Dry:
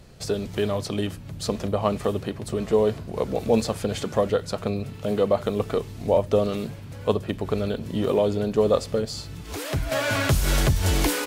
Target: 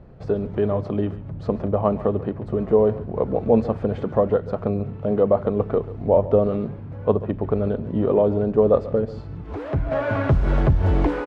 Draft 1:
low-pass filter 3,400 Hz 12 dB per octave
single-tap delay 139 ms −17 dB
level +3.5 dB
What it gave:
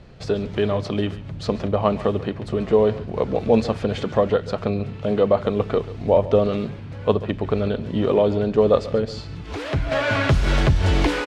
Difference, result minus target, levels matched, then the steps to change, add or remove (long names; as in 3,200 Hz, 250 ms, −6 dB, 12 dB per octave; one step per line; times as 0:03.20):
4,000 Hz band +16.5 dB
change: low-pass filter 1,100 Hz 12 dB per octave